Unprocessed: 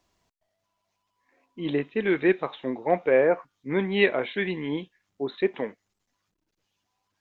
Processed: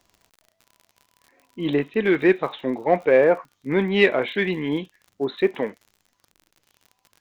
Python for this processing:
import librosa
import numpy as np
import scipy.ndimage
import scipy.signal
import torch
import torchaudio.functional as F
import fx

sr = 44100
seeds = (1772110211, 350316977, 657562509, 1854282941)

p1 = fx.dmg_crackle(x, sr, seeds[0], per_s=45.0, level_db=-43.0)
p2 = 10.0 ** (-23.0 / 20.0) * np.tanh(p1 / 10.0 ** (-23.0 / 20.0))
p3 = p1 + F.gain(torch.from_numpy(p2), -10.5).numpy()
y = F.gain(torch.from_numpy(p3), 3.0).numpy()